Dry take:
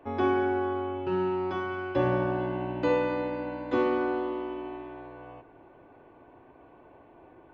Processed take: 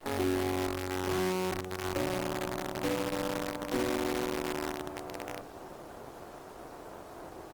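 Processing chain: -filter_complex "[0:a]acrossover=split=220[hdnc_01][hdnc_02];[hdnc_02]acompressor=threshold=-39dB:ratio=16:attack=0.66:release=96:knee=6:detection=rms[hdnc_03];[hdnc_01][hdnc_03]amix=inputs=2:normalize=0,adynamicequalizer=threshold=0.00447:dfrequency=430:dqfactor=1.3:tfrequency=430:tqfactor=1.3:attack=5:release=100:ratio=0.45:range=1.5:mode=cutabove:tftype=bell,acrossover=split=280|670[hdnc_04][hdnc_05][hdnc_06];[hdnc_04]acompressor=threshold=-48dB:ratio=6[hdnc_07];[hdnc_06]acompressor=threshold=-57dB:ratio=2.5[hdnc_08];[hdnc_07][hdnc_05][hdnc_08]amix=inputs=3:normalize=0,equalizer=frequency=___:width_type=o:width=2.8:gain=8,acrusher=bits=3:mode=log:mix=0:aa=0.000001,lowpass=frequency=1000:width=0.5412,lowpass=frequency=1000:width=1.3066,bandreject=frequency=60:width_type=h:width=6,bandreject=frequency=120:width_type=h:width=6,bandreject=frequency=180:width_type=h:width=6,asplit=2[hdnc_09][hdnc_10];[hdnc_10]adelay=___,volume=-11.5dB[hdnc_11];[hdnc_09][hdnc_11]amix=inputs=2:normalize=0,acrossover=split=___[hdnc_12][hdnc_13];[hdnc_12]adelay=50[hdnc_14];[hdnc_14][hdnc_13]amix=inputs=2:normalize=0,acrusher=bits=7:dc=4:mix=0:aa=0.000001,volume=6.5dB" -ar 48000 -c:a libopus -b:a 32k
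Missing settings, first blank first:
620, 21, 230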